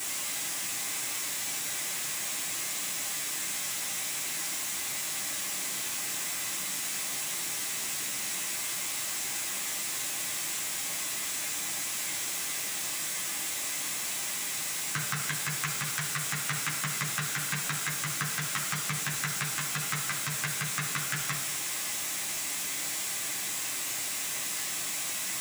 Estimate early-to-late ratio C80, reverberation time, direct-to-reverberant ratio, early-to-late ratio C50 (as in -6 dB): 10.5 dB, 1.1 s, -4.0 dB, 8.0 dB